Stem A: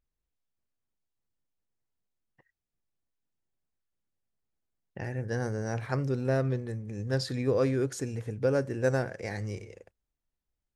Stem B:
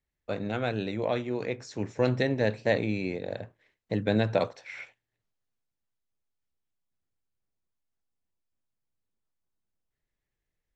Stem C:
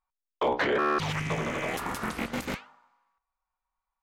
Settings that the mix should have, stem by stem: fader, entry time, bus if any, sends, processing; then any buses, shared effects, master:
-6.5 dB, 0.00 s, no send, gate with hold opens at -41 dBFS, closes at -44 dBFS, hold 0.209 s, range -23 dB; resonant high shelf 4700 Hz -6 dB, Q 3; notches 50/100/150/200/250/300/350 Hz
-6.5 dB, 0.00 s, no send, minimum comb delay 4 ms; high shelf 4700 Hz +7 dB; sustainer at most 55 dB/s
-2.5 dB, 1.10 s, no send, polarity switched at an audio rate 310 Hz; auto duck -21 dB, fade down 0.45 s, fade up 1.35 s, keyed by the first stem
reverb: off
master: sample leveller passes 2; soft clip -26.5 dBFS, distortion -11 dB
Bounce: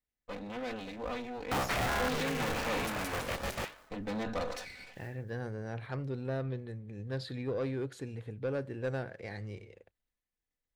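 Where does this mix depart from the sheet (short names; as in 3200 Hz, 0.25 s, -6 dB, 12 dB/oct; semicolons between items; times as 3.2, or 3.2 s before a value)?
stem A: missing notches 50/100/150/200/250/300/350 Hz; stem B: missing high shelf 4700 Hz +7 dB; master: missing sample leveller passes 2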